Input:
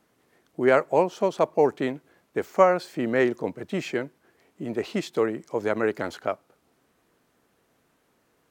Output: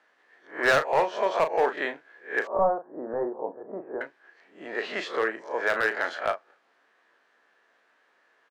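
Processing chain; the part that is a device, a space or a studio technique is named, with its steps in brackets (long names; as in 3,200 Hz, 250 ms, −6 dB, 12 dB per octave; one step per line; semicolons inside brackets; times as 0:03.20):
peak hold with a rise ahead of every peak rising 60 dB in 0.33 s
megaphone (band-pass filter 630–3,900 Hz; parametric band 1,700 Hz +10 dB 0.28 octaves; hard clipping −17.5 dBFS, distortion −11 dB; double-tracking delay 36 ms −9 dB)
0:02.47–0:04.01: Butterworth low-pass 1,000 Hz 36 dB per octave
level +1.5 dB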